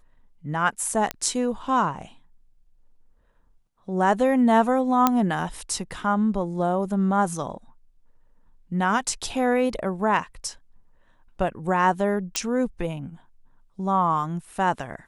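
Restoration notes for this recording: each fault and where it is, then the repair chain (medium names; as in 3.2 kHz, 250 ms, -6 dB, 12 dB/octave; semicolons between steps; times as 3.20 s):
1.11 s: pop -11 dBFS
5.07 s: pop -4 dBFS
12.36 s: pop -7 dBFS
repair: de-click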